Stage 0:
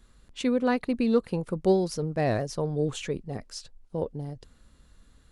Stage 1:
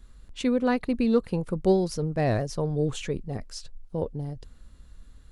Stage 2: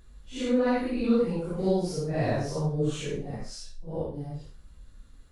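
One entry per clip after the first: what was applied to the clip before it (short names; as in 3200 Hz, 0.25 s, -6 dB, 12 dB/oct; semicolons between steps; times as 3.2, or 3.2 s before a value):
low shelf 86 Hz +10.5 dB
phase scrambler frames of 0.2 s; on a send: flutter echo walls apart 11.3 m, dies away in 0.33 s; on the sum: gain -1.5 dB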